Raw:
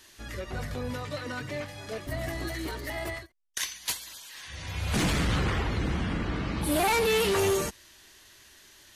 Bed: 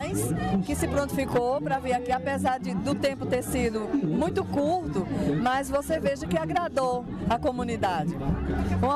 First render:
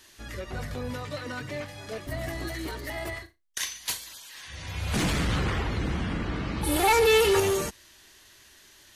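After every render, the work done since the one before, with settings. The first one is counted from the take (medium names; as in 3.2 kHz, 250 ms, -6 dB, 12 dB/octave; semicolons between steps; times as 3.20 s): 0.69–2.49 s: short-mantissa float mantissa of 6-bit; 3.09–4.09 s: flutter echo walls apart 6.1 m, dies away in 0.21 s; 6.63–7.40 s: comb 2.3 ms, depth 84%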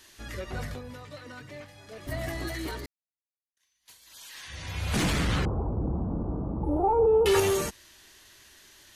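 0.69–2.09 s: dip -8.5 dB, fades 0.13 s; 2.86–4.22 s: fade in exponential; 5.45–7.26 s: inverse Chebyshev low-pass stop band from 1.8 kHz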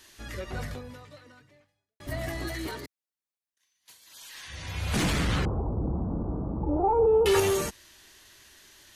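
0.81–2.00 s: fade out quadratic; 2.67–4.22 s: high-pass 100 Hz; 5.61–6.93 s: low-pass 1.4 kHz -> 2.9 kHz 24 dB/octave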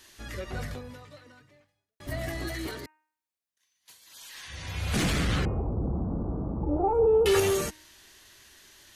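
de-hum 309.4 Hz, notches 9; dynamic bell 940 Hz, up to -5 dB, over -49 dBFS, Q 4.3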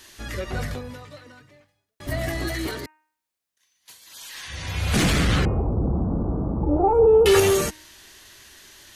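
trim +6.5 dB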